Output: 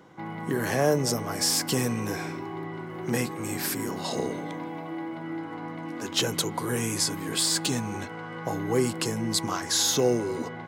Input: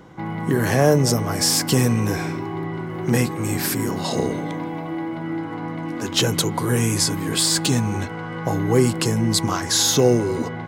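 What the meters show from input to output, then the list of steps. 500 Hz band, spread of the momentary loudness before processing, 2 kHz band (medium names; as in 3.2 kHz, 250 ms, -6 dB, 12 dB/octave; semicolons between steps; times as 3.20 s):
-6.5 dB, 11 LU, -5.5 dB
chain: high-pass 220 Hz 6 dB/octave; trim -5.5 dB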